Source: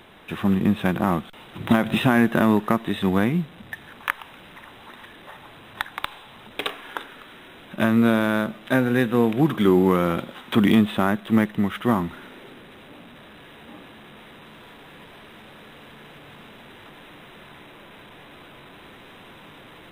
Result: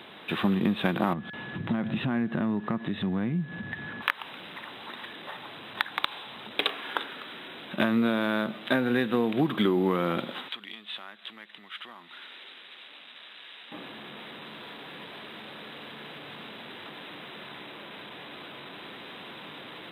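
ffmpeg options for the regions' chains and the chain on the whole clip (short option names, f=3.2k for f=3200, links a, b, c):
-filter_complex "[0:a]asettb=1/sr,asplit=3[a][b][c];[a]atrim=end=1.134[d];[b]atrim=start=1.13:end=4.02,asetpts=PTS-STARTPTS,afade=t=in:d=0.004:c=qsin,afade=t=out:st=2.886:d=0.004:c=qsin,bass=f=250:g=13,treble=f=4k:g=-14,aeval=exprs='val(0)+0.00794*sin(2*PI*1700*n/s)':c=same,acompressor=threshold=-32dB:ratio=2.5:attack=3.2:release=140:knee=1:detection=peak[e];[c]atrim=start=4.016[f];[d][e]acrossfade=d=0.004:c1=hsin:c2=qsin[g];[g][f]acrossfade=d=0.004:c1=qsin:c2=hsin,asettb=1/sr,asplit=3[h][i][j];[h]atrim=end=10.484[k];[i]atrim=start=10.48:end=13.72,asetpts=PTS-STARTPTS,afade=t=in:d=0.004:c=qsin,afade=t=out:st=3.236:d=0.004:c=qsin,acompressor=threshold=-38dB:ratio=2.5:attack=3.2:release=140:knee=1:detection=peak,bandpass=f=3.9k:t=q:w=0.65[l];[j]atrim=start=13.716[m];[k][l]acrossfade=d=0.004:c1=hsin:c2=qsin[n];[n][m]acrossfade=d=0.004:c1=qsin:c2=hsin,highpass=160,highshelf=f=4.8k:t=q:w=3:g=-6,acompressor=threshold=-23dB:ratio=5,volume=1.5dB"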